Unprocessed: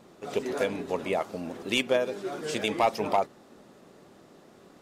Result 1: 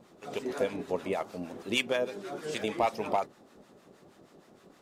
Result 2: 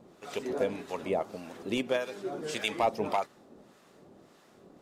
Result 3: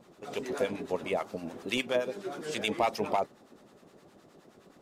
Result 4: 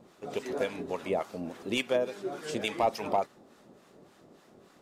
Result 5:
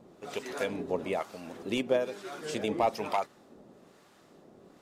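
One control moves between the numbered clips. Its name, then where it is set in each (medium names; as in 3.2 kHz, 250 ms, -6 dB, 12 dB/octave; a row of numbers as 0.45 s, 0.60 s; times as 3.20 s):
harmonic tremolo, rate: 6.4 Hz, 1.7 Hz, 9.6 Hz, 3.5 Hz, 1.1 Hz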